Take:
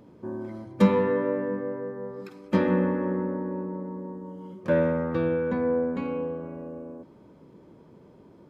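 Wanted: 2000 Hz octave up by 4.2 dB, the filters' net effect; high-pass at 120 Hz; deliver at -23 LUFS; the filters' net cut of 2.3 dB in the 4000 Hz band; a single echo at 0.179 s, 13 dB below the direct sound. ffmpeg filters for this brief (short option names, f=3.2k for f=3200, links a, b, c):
-af "highpass=120,equalizer=f=2k:t=o:g=6.5,equalizer=f=4k:t=o:g=-5.5,aecho=1:1:179:0.224,volume=4.5dB"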